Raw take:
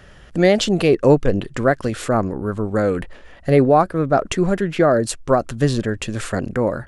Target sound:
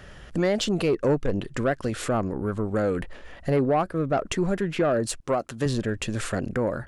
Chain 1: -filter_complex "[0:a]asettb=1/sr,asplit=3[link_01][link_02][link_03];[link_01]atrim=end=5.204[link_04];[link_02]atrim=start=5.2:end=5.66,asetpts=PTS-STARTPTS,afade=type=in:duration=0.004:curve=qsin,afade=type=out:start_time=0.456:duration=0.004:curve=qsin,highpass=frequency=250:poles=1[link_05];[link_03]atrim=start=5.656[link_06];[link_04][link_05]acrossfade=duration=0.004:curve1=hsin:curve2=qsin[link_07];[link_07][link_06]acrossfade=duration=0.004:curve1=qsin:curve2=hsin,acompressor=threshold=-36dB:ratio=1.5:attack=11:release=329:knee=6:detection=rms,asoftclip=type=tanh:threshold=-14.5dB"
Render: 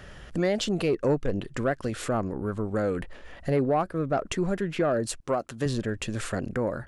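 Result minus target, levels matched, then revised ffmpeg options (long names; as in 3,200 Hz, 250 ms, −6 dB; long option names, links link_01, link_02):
downward compressor: peak gain reduction +3 dB
-filter_complex "[0:a]asettb=1/sr,asplit=3[link_01][link_02][link_03];[link_01]atrim=end=5.204[link_04];[link_02]atrim=start=5.2:end=5.66,asetpts=PTS-STARTPTS,afade=type=in:duration=0.004:curve=qsin,afade=type=out:start_time=0.456:duration=0.004:curve=qsin,highpass=frequency=250:poles=1[link_05];[link_03]atrim=start=5.656[link_06];[link_04][link_05]acrossfade=duration=0.004:curve1=hsin:curve2=qsin[link_07];[link_07][link_06]acrossfade=duration=0.004:curve1=qsin:curve2=hsin,acompressor=threshold=-27.5dB:ratio=1.5:attack=11:release=329:knee=6:detection=rms,asoftclip=type=tanh:threshold=-14.5dB"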